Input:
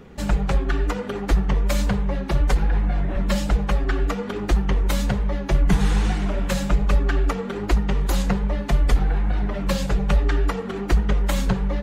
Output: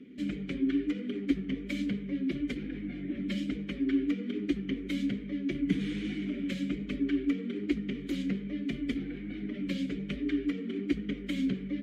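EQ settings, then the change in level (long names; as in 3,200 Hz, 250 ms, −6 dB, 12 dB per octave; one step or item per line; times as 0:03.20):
formant filter i
parametric band 320 Hz +6.5 dB 1.8 octaves
high-shelf EQ 8,300 Hz +10 dB
+1.5 dB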